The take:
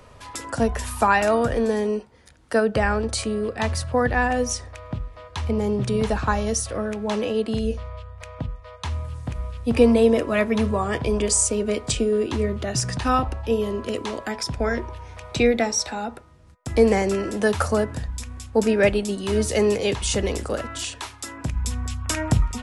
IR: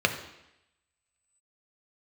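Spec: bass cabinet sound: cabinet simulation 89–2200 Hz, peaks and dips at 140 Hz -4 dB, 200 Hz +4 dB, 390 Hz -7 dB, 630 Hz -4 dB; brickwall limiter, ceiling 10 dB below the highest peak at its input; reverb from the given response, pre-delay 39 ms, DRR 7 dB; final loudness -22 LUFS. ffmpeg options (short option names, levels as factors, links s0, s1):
-filter_complex "[0:a]alimiter=limit=0.188:level=0:latency=1,asplit=2[s0][s1];[1:a]atrim=start_sample=2205,adelay=39[s2];[s1][s2]afir=irnorm=-1:irlink=0,volume=0.0891[s3];[s0][s3]amix=inputs=2:normalize=0,highpass=f=89:w=0.5412,highpass=f=89:w=1.3066,equalizer=f=140:t=q:w=4:g=-4,equalizer=f=200:t=q:w=4:g=4,equalizer=f=390:t=q:w=4:g=-7,equalizer=f=630:t=q:w=4:g=-4,lowpass=f=2200:w=0.5412,lowpass=f=2200:w=1.3066,volume=1.68"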